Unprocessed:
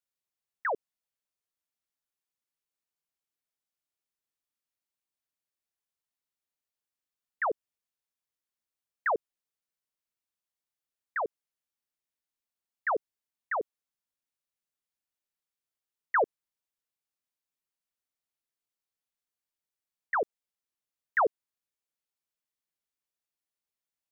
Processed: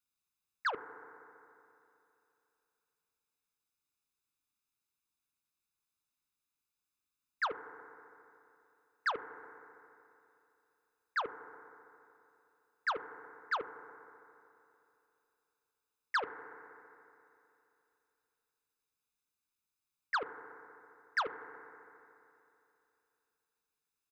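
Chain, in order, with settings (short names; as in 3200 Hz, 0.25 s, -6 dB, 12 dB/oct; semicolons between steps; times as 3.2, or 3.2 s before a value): comb 0.8 ms, depth 72%; compressor 6:1, threshold -28 dBFS, peak gain reduction 9.5 dB; FDN reverb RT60 2.9 s, high-frequency decay 0.95×, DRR 11.5 dB; core saturation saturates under 1800 Hz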